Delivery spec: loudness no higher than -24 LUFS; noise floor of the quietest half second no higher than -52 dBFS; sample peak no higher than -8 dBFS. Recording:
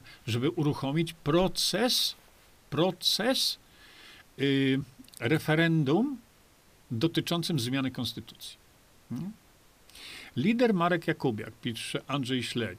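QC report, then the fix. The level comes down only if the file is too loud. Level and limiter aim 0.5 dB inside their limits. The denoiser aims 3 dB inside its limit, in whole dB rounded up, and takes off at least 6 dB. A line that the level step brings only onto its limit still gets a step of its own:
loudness -28.5 LUFS: pass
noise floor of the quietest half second -60 dBFS: pass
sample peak -13.5 dBFS: pass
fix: none needed

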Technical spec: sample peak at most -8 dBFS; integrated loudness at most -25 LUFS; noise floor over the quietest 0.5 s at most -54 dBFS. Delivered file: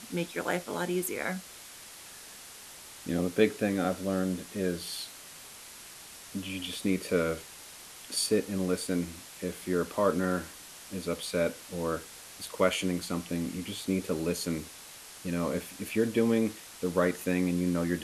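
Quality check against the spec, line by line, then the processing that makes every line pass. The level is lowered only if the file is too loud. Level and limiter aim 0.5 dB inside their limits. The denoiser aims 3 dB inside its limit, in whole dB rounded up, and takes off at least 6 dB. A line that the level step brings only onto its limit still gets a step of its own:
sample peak -10.0 dBFS: pass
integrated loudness -31.5 LUFS: pass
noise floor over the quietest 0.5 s -48 dBFS: fail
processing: noise reduction 9 dB, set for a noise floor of -48 dBFS

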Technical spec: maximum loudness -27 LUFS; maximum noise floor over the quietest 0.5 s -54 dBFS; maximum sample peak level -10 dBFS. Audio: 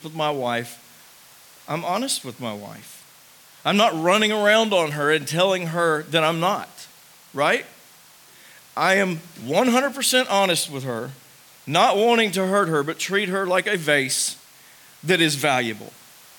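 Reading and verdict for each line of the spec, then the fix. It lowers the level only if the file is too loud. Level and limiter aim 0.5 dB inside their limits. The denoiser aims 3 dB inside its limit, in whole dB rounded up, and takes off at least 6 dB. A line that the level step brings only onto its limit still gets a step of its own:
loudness -20.5 LUFS: fail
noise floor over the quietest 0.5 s -50 dBFS: fail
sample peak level -5.0 dBFS: fail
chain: trim -7 dB

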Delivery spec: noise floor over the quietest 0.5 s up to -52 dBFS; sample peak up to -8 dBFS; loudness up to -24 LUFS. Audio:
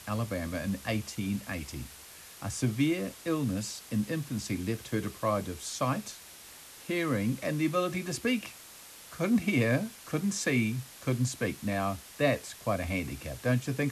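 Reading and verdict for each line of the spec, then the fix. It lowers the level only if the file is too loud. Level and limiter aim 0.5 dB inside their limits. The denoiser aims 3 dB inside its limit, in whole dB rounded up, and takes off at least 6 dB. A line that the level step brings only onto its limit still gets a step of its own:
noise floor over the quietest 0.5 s -50 dBFS: fail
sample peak -13.0 dBFS: pass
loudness -31.5 LUFS: pass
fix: noise reduction 6 dB, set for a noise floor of -50 dBFS

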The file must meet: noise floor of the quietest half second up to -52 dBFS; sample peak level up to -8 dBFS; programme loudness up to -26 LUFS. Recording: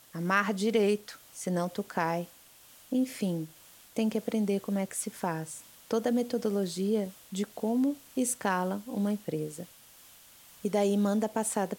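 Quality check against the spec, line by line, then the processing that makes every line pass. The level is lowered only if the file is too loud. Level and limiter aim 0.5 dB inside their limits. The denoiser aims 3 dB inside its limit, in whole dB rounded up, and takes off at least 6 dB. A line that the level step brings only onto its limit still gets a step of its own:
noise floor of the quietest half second -56 dBFS: pass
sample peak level -11.0 dBFS: pass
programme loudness -31.0 LUFS: pass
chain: none needed

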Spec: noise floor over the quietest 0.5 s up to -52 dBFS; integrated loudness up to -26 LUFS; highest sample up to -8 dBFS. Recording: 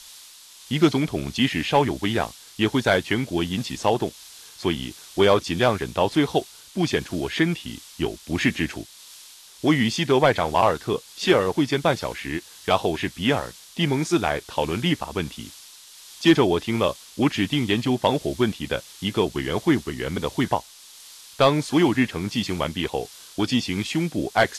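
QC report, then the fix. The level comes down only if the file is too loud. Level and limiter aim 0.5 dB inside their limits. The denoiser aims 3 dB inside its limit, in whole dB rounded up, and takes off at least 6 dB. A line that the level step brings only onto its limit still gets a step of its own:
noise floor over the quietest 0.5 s -46 dBFS: fail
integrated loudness -23.5 LUFS: fail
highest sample -6.5 dBFS: fail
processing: noise reduction 6 dB, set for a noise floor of -46 dBFS; trim -3 dB

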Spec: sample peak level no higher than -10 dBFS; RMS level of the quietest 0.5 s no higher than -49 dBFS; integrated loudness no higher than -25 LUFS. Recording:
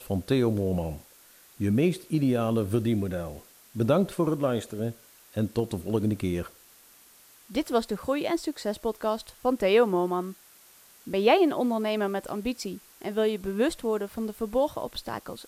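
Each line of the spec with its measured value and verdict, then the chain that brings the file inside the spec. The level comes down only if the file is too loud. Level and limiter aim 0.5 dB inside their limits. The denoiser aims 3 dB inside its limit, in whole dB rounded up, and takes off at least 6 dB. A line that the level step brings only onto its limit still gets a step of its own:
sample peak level -8.0 dBFS: fail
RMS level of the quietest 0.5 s -55 dBFS: pass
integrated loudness -27.5 LUFS: pass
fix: peak limiter -10.5 dBFS

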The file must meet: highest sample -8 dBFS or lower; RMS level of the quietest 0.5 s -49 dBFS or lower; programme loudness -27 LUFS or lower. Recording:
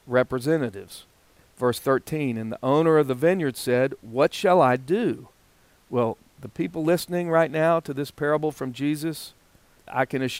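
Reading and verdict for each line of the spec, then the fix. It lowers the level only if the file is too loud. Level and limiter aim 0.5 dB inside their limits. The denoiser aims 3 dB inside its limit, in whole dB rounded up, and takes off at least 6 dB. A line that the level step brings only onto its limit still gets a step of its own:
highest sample -7.0 dBFS: fail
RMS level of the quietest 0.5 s -59 dBFS: pass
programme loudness -24.0 LUFS: fail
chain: trim -3.5 dB

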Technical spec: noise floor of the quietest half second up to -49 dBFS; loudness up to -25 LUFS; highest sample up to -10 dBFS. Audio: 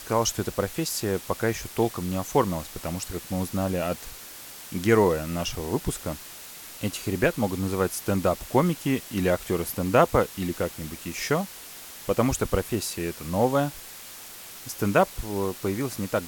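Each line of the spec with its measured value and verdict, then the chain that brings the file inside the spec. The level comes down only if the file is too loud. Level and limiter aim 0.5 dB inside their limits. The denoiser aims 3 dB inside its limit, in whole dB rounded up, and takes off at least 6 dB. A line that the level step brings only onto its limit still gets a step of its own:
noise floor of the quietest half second -43 dBFS: fail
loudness -26.5 LUFS: pass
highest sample -6.5 dBFS: fail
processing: noise reduction 9 dB, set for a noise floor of -43 dBFS; peak limiter -10.5 dBFS

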